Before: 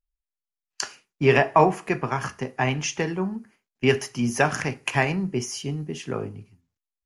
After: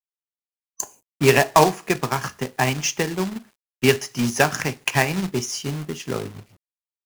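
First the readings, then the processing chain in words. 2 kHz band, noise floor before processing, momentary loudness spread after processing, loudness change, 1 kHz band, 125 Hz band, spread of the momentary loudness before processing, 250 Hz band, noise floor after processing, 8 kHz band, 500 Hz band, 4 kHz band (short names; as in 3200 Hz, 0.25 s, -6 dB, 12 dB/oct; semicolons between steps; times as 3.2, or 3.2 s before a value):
+3.0 dB, under -85 dBFS, 14 LU, +2.5 dB, +2.0 dB, +1.5 dB, 13 LU, +2.0 dB, under -85 dBFS, +6.5 dB, +2.0 dB, +6.0 dB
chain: companded quantiser 4-bit; dynamic EQ 5500 Hz, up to +4 dB, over -42 dBFS, Q 0.91; spectral gain 0.37–1.06, 1100–6000 Hz -18 dB; transient shaper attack +2 dB, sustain -3 dB; gain +1 dB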